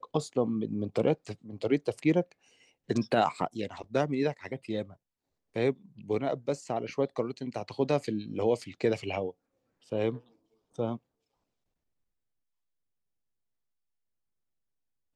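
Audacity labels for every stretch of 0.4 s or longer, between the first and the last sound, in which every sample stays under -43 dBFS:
2.320000	2.890000	silence
4.930000	5.560000	silence
9.310000	9.920000	silence
10.180000	10.760000	silence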